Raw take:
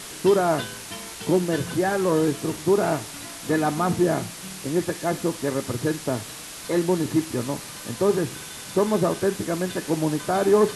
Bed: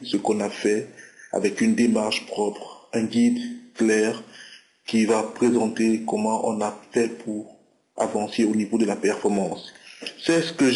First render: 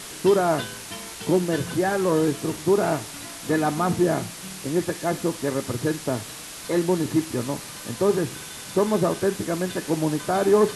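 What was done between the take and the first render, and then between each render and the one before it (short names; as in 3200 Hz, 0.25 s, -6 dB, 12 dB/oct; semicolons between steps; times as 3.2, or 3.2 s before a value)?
nothing audible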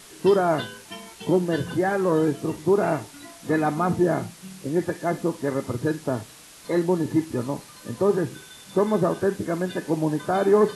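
noise print and reduce 9 dB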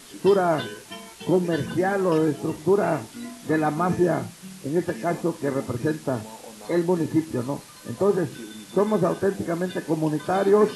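add bed -19 dB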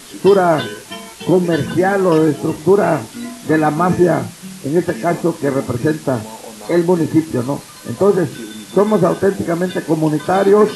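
gain +8.5 dB; limiter -2 dBFS, peak gain reduction 3 dB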